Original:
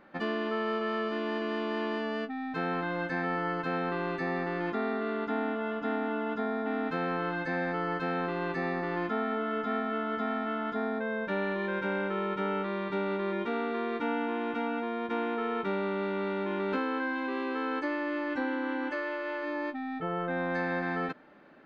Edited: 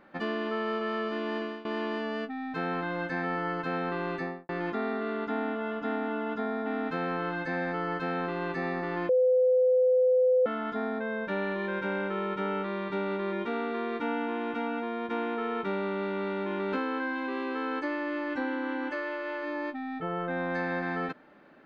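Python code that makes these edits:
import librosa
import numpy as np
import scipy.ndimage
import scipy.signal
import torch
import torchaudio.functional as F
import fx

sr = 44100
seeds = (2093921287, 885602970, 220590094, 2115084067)

y = fx.studio_fade_out(x, sr, start_s=4.17, length_s=0.32)
y = fx.edit(y, sr, fx.fade_out_to(start_s=1.4, length_s=0.25, floor_db=-18.5),
    fx.bleep(start_s=9.09, length_s=1.37, hz=508.0, db=-19.5), tone=tone)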